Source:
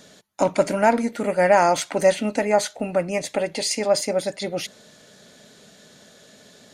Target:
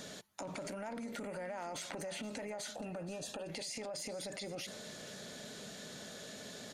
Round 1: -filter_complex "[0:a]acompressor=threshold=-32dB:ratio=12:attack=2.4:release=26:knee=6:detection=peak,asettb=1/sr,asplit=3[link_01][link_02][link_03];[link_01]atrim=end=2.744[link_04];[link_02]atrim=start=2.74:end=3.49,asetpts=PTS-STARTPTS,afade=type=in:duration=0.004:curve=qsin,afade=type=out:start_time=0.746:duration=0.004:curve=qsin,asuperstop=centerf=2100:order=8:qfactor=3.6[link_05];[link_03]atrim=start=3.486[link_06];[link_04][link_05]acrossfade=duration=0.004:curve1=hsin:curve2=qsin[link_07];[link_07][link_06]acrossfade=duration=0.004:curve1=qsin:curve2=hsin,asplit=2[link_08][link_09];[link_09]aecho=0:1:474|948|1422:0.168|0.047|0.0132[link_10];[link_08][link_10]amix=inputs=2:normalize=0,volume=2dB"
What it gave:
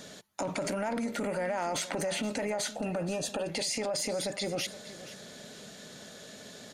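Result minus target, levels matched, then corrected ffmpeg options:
downward compressor: peak gain reduction −10.5 dB
-filter_complex "[0:a]acompressor=threshold=-43.5dB:ratio=12:attack=2.4:release=26:knee=6:detection=peak,asettb=1/sr,asplit=3[link_01][link_02][link_03];[link_01]atrim=end=2.744[link_04];[link_02]atrim=start=2.74:end=3.49,asetpts=PTS-STARTPTS,afade=type=in:duration=0.004:curve=qsin,afade=type=out:start_time=0.746:duration=0.004:curve=qsin,asuperstop=centerf=2100:order=8:qfactor=3.6[link_05];[link_03]atrim=start=3.486[link_06];[link_04][link_05]acrossfade=duration=0.004:curve1=hsin:curve2=qsin[link_07];[link_07][link_06]acrossfade=duration=0.004:curve1=qsin:curve2=hsin,asplit=2[link_08][link_09];[link_09]aecho=0:1:474|948|1422:0.168|0.047|0.0132[link_10];[link_08][link_10]amix=inputs=2:normalize=0,volume=2dB"

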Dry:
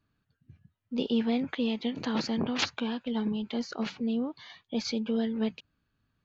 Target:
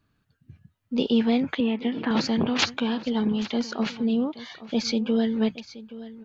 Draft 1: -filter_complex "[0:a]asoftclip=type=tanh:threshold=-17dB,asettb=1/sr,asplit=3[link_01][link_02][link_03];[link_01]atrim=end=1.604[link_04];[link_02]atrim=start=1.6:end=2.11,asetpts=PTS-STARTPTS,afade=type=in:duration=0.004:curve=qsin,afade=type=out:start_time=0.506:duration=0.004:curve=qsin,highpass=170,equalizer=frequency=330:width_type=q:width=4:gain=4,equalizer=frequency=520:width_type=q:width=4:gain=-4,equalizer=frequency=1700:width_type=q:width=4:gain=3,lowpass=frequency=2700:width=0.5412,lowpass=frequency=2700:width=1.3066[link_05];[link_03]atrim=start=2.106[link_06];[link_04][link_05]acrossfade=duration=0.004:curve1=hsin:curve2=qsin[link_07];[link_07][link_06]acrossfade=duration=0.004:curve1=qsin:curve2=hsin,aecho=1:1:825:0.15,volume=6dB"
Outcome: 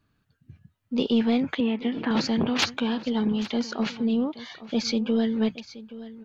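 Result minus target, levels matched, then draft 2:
soft clipping: distortion +21 dB
-filter_complex "[0:a]asoftclip=type=tanh:threshold=-6dB,asettb=1/sr,asplit=3[link_01][link_02][link_03];[link_01]atrim=end=1.604[link_04];[link_02]atrim=start=1.6:end=2.11,asetpts=PTS-STARTPTS,afade=type=in:duration=0.004:curve=qsin,afade=type=out:start_time=0.506:duration=0.004:curve=qsin,highpass=170,equalizer=frequency=330:width_type=q:width=4:gain=4,equalizer=frequency=520:width_type=q:width=4:gain=-4,equalizer=frequency=1700:width_type=q:width=4:gain=3,lowpass=frequency=2700:width=0.5412,lowpass=frequency=2700:width=1.3066[link_05];[link_03]atrim=start=2.106[link_06];[link_04][link_05]acrossfade=duration=0.004:curve1=hsin:curve2=qsin[link_07];[link_07][link_06]acrossfade=duration=0.004:curve1=qsin:curve2=hsin,aecho=1:1:825:0.15,volume=6dB"

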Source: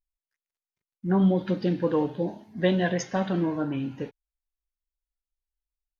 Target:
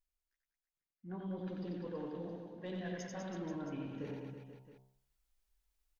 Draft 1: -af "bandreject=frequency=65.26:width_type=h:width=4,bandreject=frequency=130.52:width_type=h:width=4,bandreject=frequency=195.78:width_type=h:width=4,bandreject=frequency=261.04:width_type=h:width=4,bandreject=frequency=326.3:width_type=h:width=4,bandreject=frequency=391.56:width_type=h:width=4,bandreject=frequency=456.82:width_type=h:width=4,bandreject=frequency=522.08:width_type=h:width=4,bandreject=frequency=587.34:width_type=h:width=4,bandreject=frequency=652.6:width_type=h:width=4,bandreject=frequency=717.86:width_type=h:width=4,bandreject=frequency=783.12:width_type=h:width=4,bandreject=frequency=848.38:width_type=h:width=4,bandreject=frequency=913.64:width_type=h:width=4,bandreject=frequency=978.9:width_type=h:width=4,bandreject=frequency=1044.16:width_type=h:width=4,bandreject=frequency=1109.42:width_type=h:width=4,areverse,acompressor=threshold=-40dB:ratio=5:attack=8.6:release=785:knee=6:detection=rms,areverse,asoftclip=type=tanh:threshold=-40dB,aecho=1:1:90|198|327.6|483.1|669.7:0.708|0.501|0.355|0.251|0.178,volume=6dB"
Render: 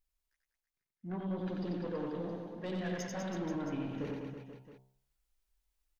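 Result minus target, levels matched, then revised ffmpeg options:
downward compressor: peak gain reduction −7 dB
-af "bandreject=frequency=65.26:width_type=h:width=4,bandreject=frequency=130.52:width_type=h:width=4,bandreject=frequency=195.78:width_type=h:width=4,bandreject=frequency=261.04:width_type=h:width=4,bandreject=frequency=326.3:width_type=h:width=4,bandreject=frequency=391.56:width_type=h:width=4,bandreject=frequency=456.82:width_type=h:width=4,bandreject=frequency=522.08:width_type=h:width=4,bandreject=frequency=587.34:width_type=h:width=4,bandreject=frequency=652.6:width_type=h:width=4,bandreject=frequency=717.86:width_type=h:width=4,bandreject=frequency=783.12:width_type=h:width=4,bandreject=frequency=848.38:width_type=h:width=4,bandreject=frequency=913.64:width_type=h:width=4,bandreject=frequency=978.9:width_type=h:width=4,bandreject=frequency=1044.16:width_type=h:width=4,bandreject=frequency=1109.42:width_type=h:width=4,areverse,acompressor=threshold=-48.5dB:ratio=5:attack=8.6:release=785:knee=6:detection=rms,areverse,asoftclip=type=tanh:threshold=-40dB,aecho=1:1:90|198|327.6|483.1|669.7:0.708|0.501|0.355|0.251|0.178,volume=6dB"

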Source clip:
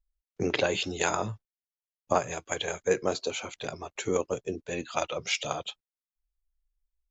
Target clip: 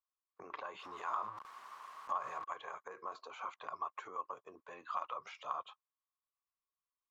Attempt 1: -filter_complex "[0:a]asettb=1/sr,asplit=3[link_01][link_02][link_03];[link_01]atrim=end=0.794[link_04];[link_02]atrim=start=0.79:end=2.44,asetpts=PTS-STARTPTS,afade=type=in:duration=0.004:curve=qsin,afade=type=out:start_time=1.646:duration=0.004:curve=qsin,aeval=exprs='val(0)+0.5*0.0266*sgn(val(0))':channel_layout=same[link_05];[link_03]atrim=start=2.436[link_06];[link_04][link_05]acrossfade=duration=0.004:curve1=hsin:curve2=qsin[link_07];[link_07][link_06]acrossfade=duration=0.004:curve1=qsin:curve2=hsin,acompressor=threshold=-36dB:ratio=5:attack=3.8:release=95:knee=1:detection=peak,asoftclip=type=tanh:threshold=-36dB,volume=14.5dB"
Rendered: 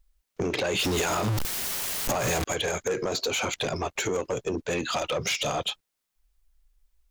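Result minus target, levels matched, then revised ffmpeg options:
1,000 Hz band −9.0 dB
-filter_complex "[0:a]asettb=1/sr,asplit=3[link_01][link_02][link_03];[link_01]atrim=end=0.794[link_04];[link_02]atrim=start=0.79:end=2.44,asetpts=PTS-STARTPTS,afade=type=in:duration=0.004:curve=qsin,afade=type=out:start_time=1.646:duration=0.004:curve=qsin,aeval=exprs='val(0)+0.5*0.0266*sgn(val(0))':channel_layout=same[link_05];[link_03]atrim=start=2.436[link_06];[link_04][link_05]acrossfade=duration=0.004:curve1=hsin:curve2=qsin[link_07];[link_07][link_06]acrossfade=duration=0.004:curve1=qsin:curve2=hsin,acompressor=threshold=-36dB:ratio=5:attack=3.8:release=95:knee=1:detection=peak,bandpass=frequency=1100:width_type=q:width=12:csg=0,asoftclip=type=tanh:threshold=-36dB,volume=14.5dB"

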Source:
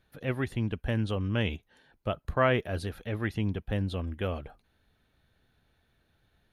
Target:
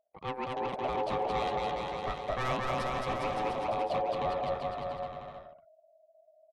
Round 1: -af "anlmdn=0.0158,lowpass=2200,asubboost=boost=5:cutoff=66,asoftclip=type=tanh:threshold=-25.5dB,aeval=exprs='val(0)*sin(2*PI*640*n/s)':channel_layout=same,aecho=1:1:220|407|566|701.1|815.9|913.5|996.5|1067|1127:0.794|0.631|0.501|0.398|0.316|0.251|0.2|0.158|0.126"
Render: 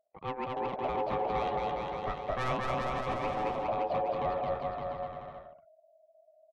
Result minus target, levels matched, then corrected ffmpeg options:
8,000 Hz band −5.0 dB
-af "anlmdn=0.0158,lowpass=8700,asubboost=boost=5:cutoff=66,asoftclip=type=tanh:threshold=-25.5dB,aeval=exprs='val(0)*sin(2*PI*640*n/s)':channel_layout=same,aecho=1:1:220|407|566|701.1|815.9|913.5|996.5|1067|1127:0.794|0.631|0.501|0.398|0.316|0.251|0.2|0.158|0.126"

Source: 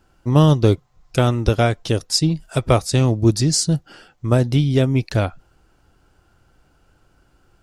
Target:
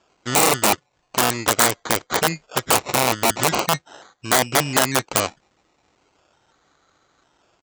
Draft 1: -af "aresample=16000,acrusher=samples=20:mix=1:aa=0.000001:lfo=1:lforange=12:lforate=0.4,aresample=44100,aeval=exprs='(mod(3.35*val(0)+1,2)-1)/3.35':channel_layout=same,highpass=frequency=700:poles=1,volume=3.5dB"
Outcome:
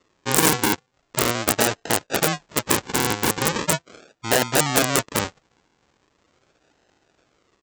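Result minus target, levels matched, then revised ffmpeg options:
sample-and-hold swept by an LFO: distortion +8 dB
-af "aresample=16000,acrusher=samples=8:mix=1:aa=0.000001:lfo=1:lforange=4.8:lforate=0.4,aresample=44100,aeval=exprs='(mod(3.35*val(0)+1,2)-1)/3.35':channel_layout=same,highpass=frequency=700:poles=1,volume=3.5dB"

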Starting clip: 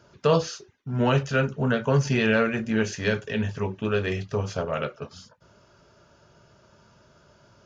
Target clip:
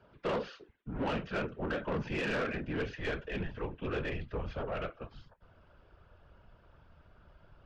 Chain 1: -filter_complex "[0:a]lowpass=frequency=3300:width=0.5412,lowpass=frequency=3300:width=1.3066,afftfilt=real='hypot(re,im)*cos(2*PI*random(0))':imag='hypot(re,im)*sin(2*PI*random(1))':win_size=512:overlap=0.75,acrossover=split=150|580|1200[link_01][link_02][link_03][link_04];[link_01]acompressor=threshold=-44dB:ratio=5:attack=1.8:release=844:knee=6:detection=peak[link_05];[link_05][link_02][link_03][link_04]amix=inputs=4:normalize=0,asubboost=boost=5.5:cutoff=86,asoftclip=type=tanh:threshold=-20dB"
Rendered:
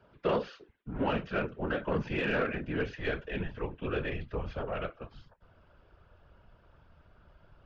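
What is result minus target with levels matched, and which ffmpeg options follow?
soft clipping: distortion −9 dB
-filter_complex "[0:a]lowpass=frequency=3300:width=0.5412,lowpass=frequency=3300:width=1.3066,afftfilt=real='hypot(re,im)*cos(2*PI*random(0))':imag='hypot(re,im)*sin(2*PI*random(1))':win_size=512:overlap=0.75,acrossover=split=150|580|1200[link_01][link_02][link_03][link_04];[link_01]acompressor=threshold=-44dB:ratio=5:attack=1.8:release=844:knee=6:detection=peak[link_05];[link_05][link_02][link_03][link_04]amix=inputs=4:normalize=0,asubboost=boost=5.5:cutoff=86,asoftclip=type=tanh:threshold=-28.5dB"

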